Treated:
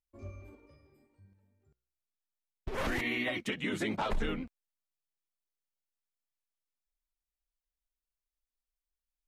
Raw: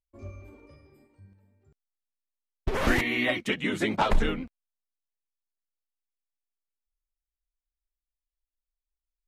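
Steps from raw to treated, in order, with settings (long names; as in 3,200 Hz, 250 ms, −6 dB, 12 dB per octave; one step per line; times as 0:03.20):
brickwall limiter −20 dBFS, peak gain reduction 10 dB
0:00.55–0:02.78: tuned comb filter 61 Hz, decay 0.69 s, mix 40%
level −3.5 dB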